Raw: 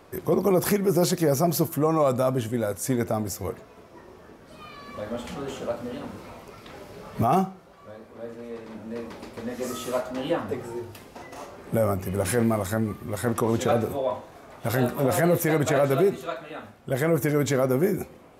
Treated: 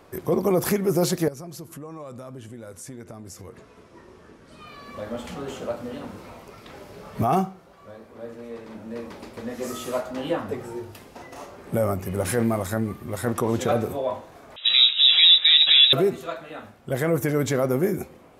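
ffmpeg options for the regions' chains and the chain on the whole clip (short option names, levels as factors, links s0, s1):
-filter_complex "[0:a]asettb=1/sr,asplit=3[s0][s1][s2];[s0]atrim=end=1.284[s3];[s1]atrim=start=1.28:end=4.67,asetpts=PTS-STARTPTS,afade=t=in:d=0.004:c=qsin,afade=t=out:st=3.386:d=0.004:c=qsin,lowpass=f=11000:w=0.5412,lowpass=f=11000:w=1.3066,equalizer=f=710:w=2.1:g=-5.5,acompressor=threshold=0.0126:ratio=4:attack=3.2:release=140:knee=1:detection=peak[s4];[s2]atrim=start=4.666[s5];[s3][s4]acrossfade=d=0.004:c1=hsin:c2=qsin[s6];[s6][s5]acrossfade=d=0.004:c1=qsin:c2=hsin,asettb=1/sr,asplit=3[s7][s8][s9];[s7]atrim=end=14.564[s10];[s8]atrim=start=14.56:end=15.93,asetpts=PTS-STARTPTS,afade=t=in:d=0.004:c=qsin,afade=t=out:st=1.366:d=0.004:c=qsin,lowpass=f=3400:t=q:w=0.5098,lowpass=f=3400:t=q:w=0.6013,lowpass=f=3400:t=q:w=0.9,lowpass=f=3400:t=q:w=2.563,afreqshift=-4000,highshelf=f=3000:g=11[s11];[s9]atrim=start=15.926[s12];[s10][s11]acrossfade=d=0.004:c1=hsin:c2=qsin[s13];[s13][s12]acrossfade=d=0.004:c1=qsin:c2=hsin"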